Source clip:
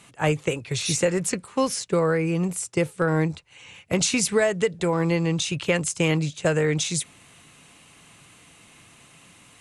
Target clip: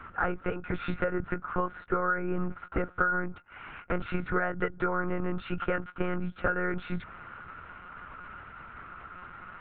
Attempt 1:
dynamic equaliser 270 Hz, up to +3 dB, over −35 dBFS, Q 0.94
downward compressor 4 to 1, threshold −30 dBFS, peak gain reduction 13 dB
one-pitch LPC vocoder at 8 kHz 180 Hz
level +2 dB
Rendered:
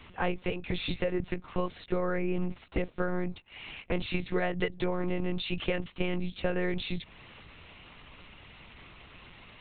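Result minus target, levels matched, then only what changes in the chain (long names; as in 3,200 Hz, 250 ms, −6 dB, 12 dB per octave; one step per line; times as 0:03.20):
1,000 Hz band −5.5 dB
add after dynamic equaliser: low-pass with resonance 1,400 Hz, resonance Q 14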